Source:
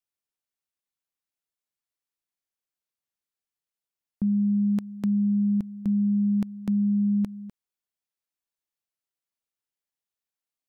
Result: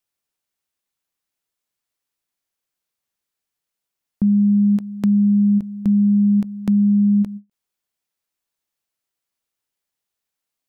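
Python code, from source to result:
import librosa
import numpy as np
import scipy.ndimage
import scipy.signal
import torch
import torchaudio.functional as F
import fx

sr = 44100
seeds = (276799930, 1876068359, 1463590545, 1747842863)

y = fx.end_taper(x, sr, db_per_s=370.0)
y = y * 10.0 ** (8.0 / 20.0)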